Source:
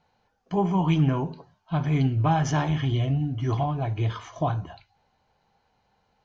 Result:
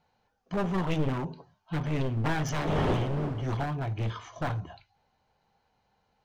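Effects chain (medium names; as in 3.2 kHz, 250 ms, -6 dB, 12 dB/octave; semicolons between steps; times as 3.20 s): one-sided wavefolder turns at -24 dBFS; 2.02–3.41 s: wind noise 570 Hz -29 dBFS; trim -3.5 dB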